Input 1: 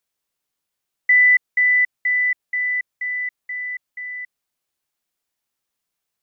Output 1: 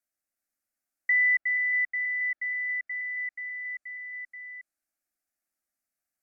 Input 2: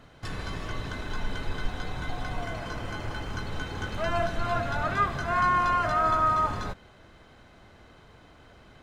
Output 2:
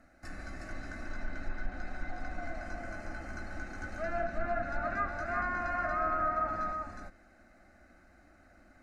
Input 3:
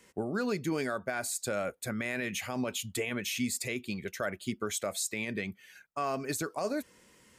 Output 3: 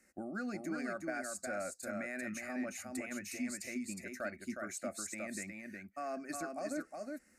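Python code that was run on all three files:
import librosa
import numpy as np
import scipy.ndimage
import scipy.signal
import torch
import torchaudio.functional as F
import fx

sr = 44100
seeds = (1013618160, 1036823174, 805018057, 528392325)

y = fx.fixed_phaser(x, sr, hz=660.0, stages=8)
y = y + 10.0 ** (-4.0 / 20.0) * np.pad(y, (int(363 * sr / 1000.0), 0))[:len(y)]
y = fx.env_lowpass_down(y, sr, base_hz=2200.0, full_db=-20.5)
y = y * librosa.db_to_amplitude(-5.5)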